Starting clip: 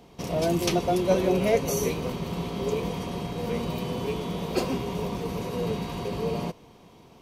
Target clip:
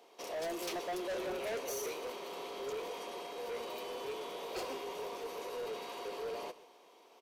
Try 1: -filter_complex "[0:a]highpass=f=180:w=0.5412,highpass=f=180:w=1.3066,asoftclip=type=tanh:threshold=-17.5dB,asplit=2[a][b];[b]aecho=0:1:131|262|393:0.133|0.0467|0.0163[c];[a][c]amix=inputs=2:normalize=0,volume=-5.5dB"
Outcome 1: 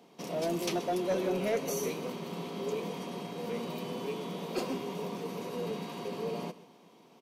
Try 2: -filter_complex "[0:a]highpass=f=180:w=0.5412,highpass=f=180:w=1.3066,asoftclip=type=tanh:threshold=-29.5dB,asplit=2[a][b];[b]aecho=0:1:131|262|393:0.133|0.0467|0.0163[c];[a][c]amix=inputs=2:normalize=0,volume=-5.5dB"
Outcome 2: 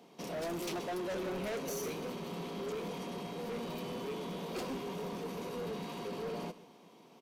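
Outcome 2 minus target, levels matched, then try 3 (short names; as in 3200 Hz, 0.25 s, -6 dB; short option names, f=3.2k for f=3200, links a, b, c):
250 Hz band +6.5 dB
-filter_complex "[0:a]highpass=f=390:w=0.5412,highpass=f=390:w=1.3066,asoftclip=type=tanh:threshold=-29.5dB,asplit=2[a][b];[b]aecho=0:1:131|262|393:0.133|0.0467|0.0163[c];[a][c]amix=inputs=2:normalize=0,volume=-5.5dB"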